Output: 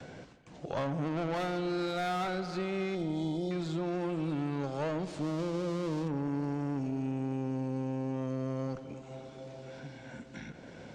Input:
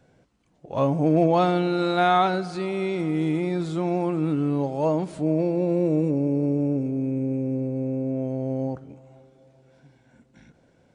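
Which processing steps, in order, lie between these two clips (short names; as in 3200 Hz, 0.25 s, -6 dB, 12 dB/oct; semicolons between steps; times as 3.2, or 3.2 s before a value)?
5.17–6.08 switching dead time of 0.12 ms; gate with hold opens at -58 dBFS; Bessel low-pass 4900 Hz, order 8; high shelf 2700 Hz +11 dB; tube stage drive 24 dB, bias 0.45; 2.95–3.51 brick-wall FIR band-stop 960–3000 Hz; analogue delay 88 ms, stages 2048, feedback 77%, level -17 dB; three-band squash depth 70%; gain -5.5 dB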